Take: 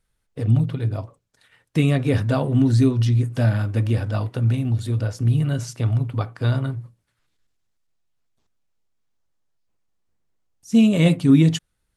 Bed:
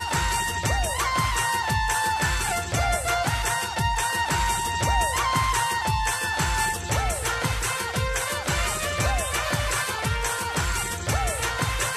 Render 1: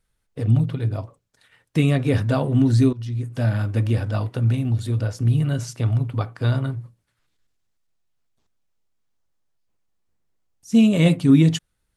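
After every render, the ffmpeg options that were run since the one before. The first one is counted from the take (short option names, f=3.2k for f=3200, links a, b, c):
-filter_complex "[0:a]asplit=2[a][b];[a]atrim=end=2.93,asetpts=PTS-STARTPTS,afade=t=out:st=2.926:d=0.004:c=hsin:silence=0.141254[c];[b]atrim=start=2.93,asetpts=PTS-STARTPTS,afade=t=in:d=0.72:silence=0.141254[d];[c][d]concat=n=2:v=0:a=1"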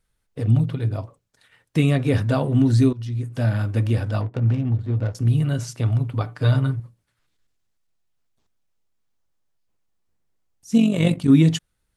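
-filter_complex "[0:a]asettb=1/sr,asplit=3[a][b][c];[a]atrim=end=4.214[d];[b]atrim=start=4.21:end=5.15,asetpts=PTS-STARTPTS,afade=t=in:d=0.004:c=qsin,afade=t=out:st=0.936:d=0.004:c=qsin,adynamicsmooth=sensitivity=3.5:basefreq=540[e];[c]atrim=start=5.146[f];[d][e]acrossfade=d=0.004:c1=hsin:c2=qsin[g];[g][f]acrossfade=d=0.004:c1=qsin:c2=hsin,asettb=1/sr,asplit=3[h][i][j];[h]atrim=end=6.234[k];[i]atrim=start=6.23:end=6.8,asetpts=PTS-STARTPTS,afade=t=in:d=0.004:c=qsin,afade=t=out:st=0.566:d=0.004:c=qsin,aecho=1:1:6.7:0.69,atrim=end_sample=25137[l];[j]atrim=start=6.796[m];[k][l]acrossfade=d=0.004:c1=hsin:c2=qsin[n];[n][m]acrossfade=d=0.004:c1=qsin:c2=hsin,asplit=3[o][p][q];[o]afade=t=out:st=10.76:d=0.02[r];[p]tremolo=f=47:d=0.621,afade=t=in:st=10.76:d=0.02,afade=t=out:st=11.28:d=0.02[s];[q]afade=t=in:st=11.28:d=0.02[t];[r][s][t]amix=inputs=3:normalize=0"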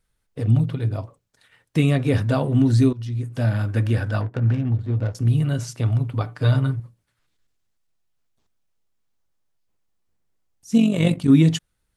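-filter_complex "[0:a]asettb=1/sr,asplit=3[a][b][c];[a]atrim=end=3.684[d];[b]atrim=start=3.68:end=4.68,asetpts=PTS-STARTPTS,afade=t=in:d=0.004:c=qsin,afade=t=out:st=0.996:d=0.004:c=qsin,equalizer=f=1.6k:t=o:w=0.4:g=8[e];[c]atrim=start=4.676[f];[d][e]acrossfade=d=0.004:c1=hsin:c2=qsin[g];[g][f]acrossfade=d=0.004:c1=qsin:c2=hsin"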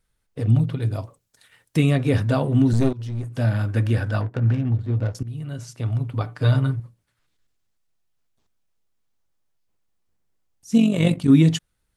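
-filter_complex "[0:a]asettb=1/sr,asplit=3[a][b][c];[a]atrim=end=0.824[d];[b]atrim=start=0.82:end=1.77,asetpts=PTS-STARTPTS,afade=t=in:d=0.004:c=qsin,afade=t=out:st=0.946:d=0.004:c=qsin,aemphasis=mode=production:type=cd[e];[c]atrim=start=1.766[f];[d][e]acrossfade=d=0.004:c1=hsin:c2=qsin[g];[g][f]acrossfade=d=0.004:c1=qsin:c2=hsin,asettb=1/sr,asplit=3[h][i][j];[h]atrim=end=2.734[k];[i]atrim=start=2.73:end=3.35,asetpts=PTS-STARTPTS,afade=t=in:d=0.004:c=qsin,afade=t=out:st=0.616:d=0.004:c=qsin,aeval=exprs='clip(val(0),-1,0.0355)':c=same[l];[j]atrim=start=3.346[m];[k][l]acrossfade=d=0.004:c1=hsin:c2=qsin[n];[n][m]acrossfade=d=0.004:c1=qsin:c2=hsin,asplit=2[o][p];[o]atrim=end=5.23,asetpts=PTS-STARTPTS,afade=t=out:st=5.226:d=0.004:c=hsin:silence=0.133352[q];[p]atrim=start=5.23,asetpts=PTS-STARTPTS,afade=t=in:d=1.1:silence=0.133352[r];[q][r]concat=n=2:v=0:a=1"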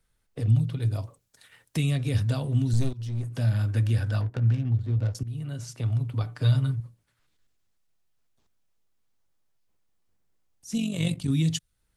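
-filter_complex "[0:a]acrossover=split=130|3000[a][b][c];[b]acompressor=threshold=-38dB:ratio=2.5[d];[a][d][c]amix=inputs=3:normalize=0"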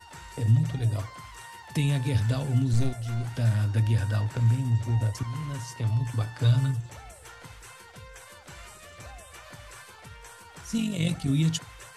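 -filter_complex "[1:a]volume=-20.5dB[a];[0:a][a]amix=inputs=2:normalize=0"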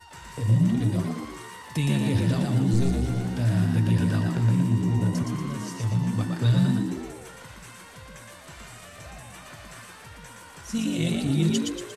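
-filter_complex "[0:a]asplit=7[a][b][c][d][e][f][g];[b]adelay=117,afreqshift=65,volume=-3dB[h];[c]adelay=234,afreqshift=130,volume=-9.4dB[i];[d]adelay=351,afreqshift=195,volume=-15.8dB[j];[e]adelay=468,afreqshift=260,volume=-22.1dB[k];[f]adelay=585,afreqshift=325,volume=-28.5dB[l];[g]adelay=702,afreqshift=390,volume=-34.9dB[m];[a][h][i][j][k][l][m]amix=inputs=7:normalize=0"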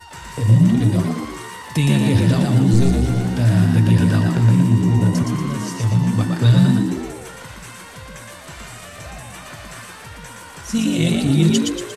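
-af "volume=8dB"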